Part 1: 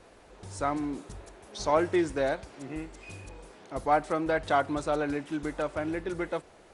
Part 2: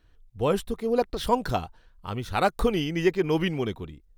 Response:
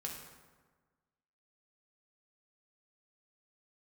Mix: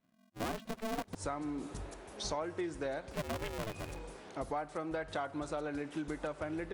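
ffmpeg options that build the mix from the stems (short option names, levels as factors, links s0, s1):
-filter_complex "[0:a]adelay=650,volume=0.944,asplit=2[s0][s1];[s1]volume=0.188[s2];[1:a]agate=range=0.282:threshold=0.00501:ratio=16:detection=peak,lowpass=3300,aeval=exprs='val(0)*sgn(sin(2*PI*220*n/s))':c=same,volume=0.531,asplit=3[s3][s4][s5];[s3]atrim=end=1.15,asetpts=PTS-STARTPTS,afade=t=out:st=1.146:d=0.004:c=hsin[s6];[s4]atrim=start=1.15:end=3.11,asetpts=PTS-STARTPTS,volume=0[s7];[s5]atrim=start=3.11,asetpts=PTS-STARTPTS,afade=t=in:d=0.004:c=hsin[s8];[s6][s7][s8]concat=n=3:v=0:a=1,asplit=2[s9][s10];[s10]apad=whole_len=325838[s11];[s0][s11]sidechaincompress=threshold=0.00562:ratio=8:attack=39:release=120[s12];[2:a]atrim=start_sample=2205[s13];[s2][s13]afir=irnorm=-1:irlink=0[s14];[s12][s9][s14]amix=inputs=3:normalize=0,acompressor=threshold=0.0178:ratio=6"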